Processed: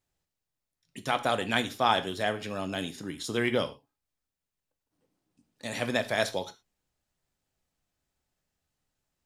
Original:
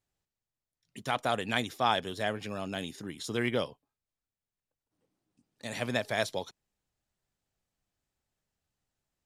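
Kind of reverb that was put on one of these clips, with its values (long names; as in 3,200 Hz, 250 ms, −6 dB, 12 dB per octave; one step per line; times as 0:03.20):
reverb whose tail is shaped and stops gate 140 ms falling, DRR 9 dB
level +2.5 dB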